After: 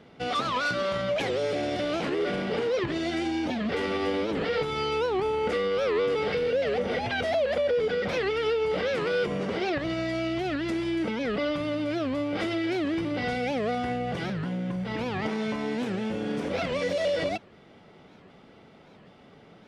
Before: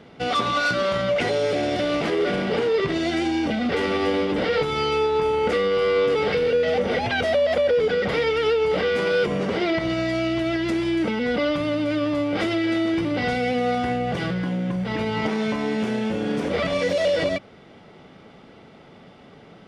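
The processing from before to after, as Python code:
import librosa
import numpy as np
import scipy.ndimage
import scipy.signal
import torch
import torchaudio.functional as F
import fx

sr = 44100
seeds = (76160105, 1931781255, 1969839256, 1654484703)

y = fx.record_warp(x, sr, rpm=78.0, depth_cents=250.0)
y = F.gain(torch.from_numpy(y), -5.5).numpy()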